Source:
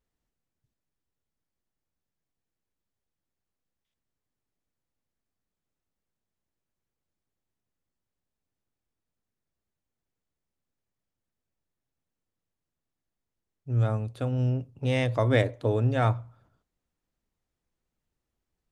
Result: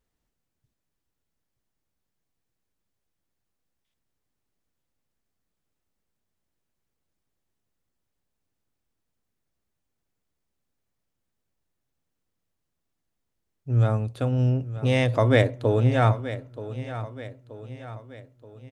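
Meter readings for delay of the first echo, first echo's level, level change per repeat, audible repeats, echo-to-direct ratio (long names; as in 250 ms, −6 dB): 928 ms, −13.5 dB, −6.0 dB, 4, −12.5 dB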